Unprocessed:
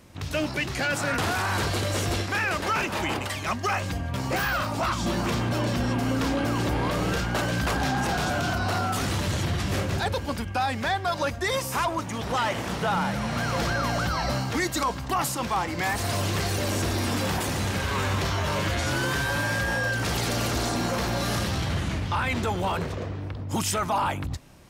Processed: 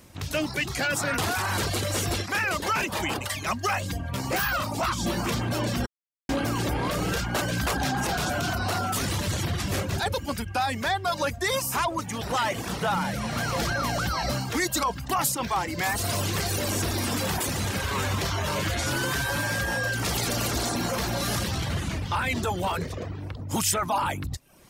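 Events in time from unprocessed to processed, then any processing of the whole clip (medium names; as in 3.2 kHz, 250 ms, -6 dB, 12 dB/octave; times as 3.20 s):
5.86–6.29 s: mute
whole clip: reverb removal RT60 0.57 s; treble shelf 6.7 kHz +8 dB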